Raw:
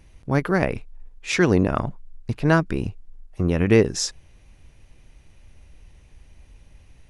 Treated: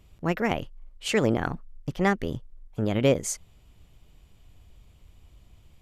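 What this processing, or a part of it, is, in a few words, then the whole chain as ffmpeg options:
nightcore: -af "asetrate=53802,aresample=44100,volume=-5dB"

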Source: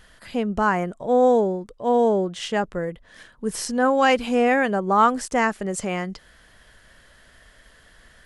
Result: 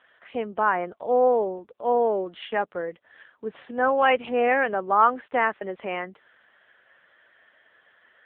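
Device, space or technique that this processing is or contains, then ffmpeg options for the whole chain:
telephone: -filter_complex "[0:a]asettb=1/sr,asplit=3[a][b][c];[a]atrim=end=4.284[d];[b]atrim=start=4.28:end=5.73,asetpts=PTS-STARTPTS,afade=t=in:d=0.004:c=qsin,afade=t=out:st=1.446:d=0.004:c=qsin,deesser=0.3[e];[c]atrim=start=5.726[f];[d][e]acrossfade=d=0.004:c1=hsin:c2=qsin[g];[g][f]acrossfade=d=0.004:c1=qsin:c2=hsin,highpass=390,lowpass=3.1k" -ar 8000 -c:a libopencore_amrnb -b:a 6700

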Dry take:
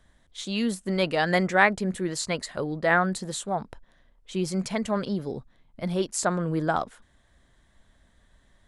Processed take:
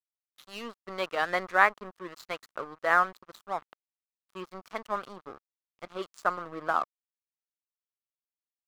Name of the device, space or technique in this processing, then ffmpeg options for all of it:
pocket radio on a weak battery: -af "highpass=380,lowpass=4k,aeval=exprs='sgn(val(0))*max(abs(val(0))-0.0141,0)':c=same,equalizer=f=1.2k:t=o:w=0.55:g=11,volume=-4.5dB"

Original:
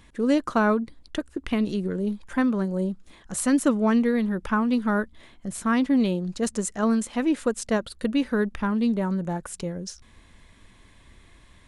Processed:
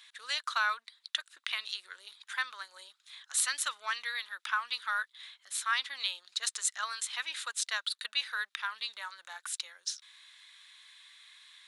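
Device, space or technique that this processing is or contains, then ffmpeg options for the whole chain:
headphones lying on a table: -af "highpass=f=1.3k:w=0.5412,highpass=f=1.3k:w=1.3066,equalizer=f=3.8k:t=o:w=0.48:g=11.5"

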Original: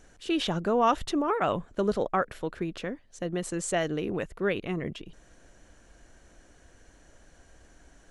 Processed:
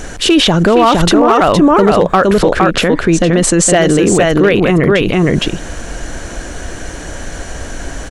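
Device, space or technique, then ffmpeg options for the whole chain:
loud club master: -filter_complex "[0:a]asettb=1/sr,asplit=3[a][b][c];[a]atrim=end=2.474[d];[b]atrim=start=2.47:end=3.82,asetpts=PTS-STARTPTS,afade=t=in:d=0.004:c=qsin,afade=t=out:st=1.346:d=0.004:c=qsin,lowpass=f=10k:w=0.5412,lowpass=f=10k:w=1.3066[e];[c]atrim=start=3.816[f];[d][e]acrossfade=d=0.004:c1=hsin:c2=qsin[g];[g][f]acrossfade=d=0.004:c1=qsin:c2=hsin,aecho=1:1:463:0.631,acompressor=threshold=-27dB:ratio=2.5,asoftclip=type=hard:threshold=-22dB,alimiter=level_in=31dB:limit=-1dB:release=50:level=0:latency=1,volume=-1dB"

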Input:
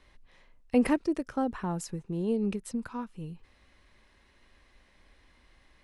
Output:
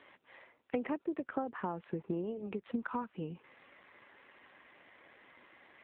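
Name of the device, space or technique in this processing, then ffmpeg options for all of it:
voicemail: -af "highpass=310,lowpass=2.9k,acompressor=threshold=-42dB:ratio=8,volume=10dB" -ar 8000 -c:a libopencore_amrnb -b:a 7400

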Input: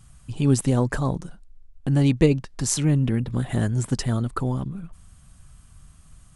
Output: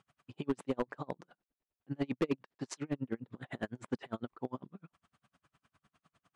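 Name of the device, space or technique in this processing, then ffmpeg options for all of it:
helicopter radio: -af "highpass=320,lowpass=2.9k,aeval=exprs='val(0)*pow(10,-38*(0.5-0.5*cos(2*PI*9.9*n/s))/20)':c=same,asoftclip=type=hard:threshold=-22.5dB,volume=-1.5dB"

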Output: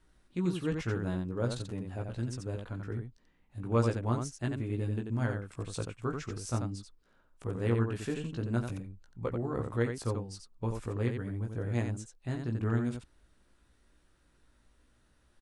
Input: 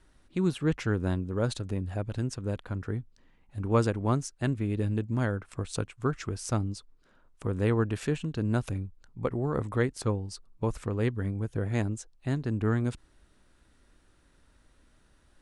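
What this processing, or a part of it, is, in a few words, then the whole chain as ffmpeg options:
slapback doubling: -filter_complex "[0:a]asplit=3[a][b][c];[b]adelay=17,volume=-4dB[d];[c]adelay=88,volume=-5dB[e];[a][d][e]amix=inputs=3:normalize=0,volume=-6.5dB"

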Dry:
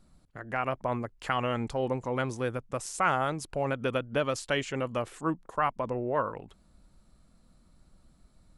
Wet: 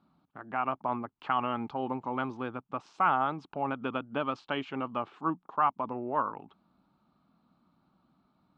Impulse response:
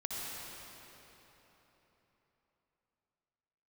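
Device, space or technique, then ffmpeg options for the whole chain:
kitchen radio: -af "highpass=170,equalizer=f=180:t=q:w=4:g=3,equalizer=f=270:t=q:w=4:g=5,equalizer=f=510:t=q:w=4:g=-7,equalizer=f=850:t=q:w=4:g=8,equalizer=f=1.2k:t=q:w=4:g=7,equalizer=f=1.9k:t=q:w=4:g=-8,lowpass=f=3.6k:w=0.5412,lowpass=f=3.6k:w=1.3066,volume=-3.5dB"

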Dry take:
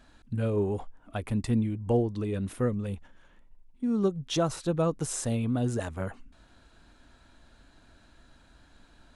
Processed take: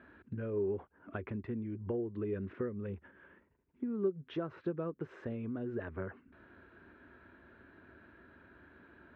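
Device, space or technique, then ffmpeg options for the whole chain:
bass amplifier: -af "acompressor=threshold=-38dB:ratio=5,highpass=f=76:w=0.5412,highpass=f=76:w=1.3066,equalizer=f=130:t=q:w=4:g=-7,equalizer=f=380:t=q:w=4:g=10,equalizer=f=770:t=q:w=4:g=-7,equalizer=f=1.6k:t=q:w=4:g=5,lowpass=f=2.3k:w=0.5412,lowpass=f=2.3k:w=1.3066,volume=1dB"

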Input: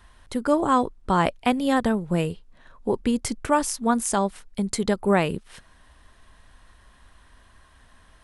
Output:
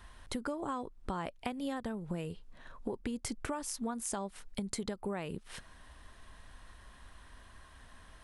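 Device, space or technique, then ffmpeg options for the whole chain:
serial compression, peaks first: -af "acompressor=threshold=-29dB:ratio=5,acompressor=threshold=-36dB:ratio=2,volume=-1dB"

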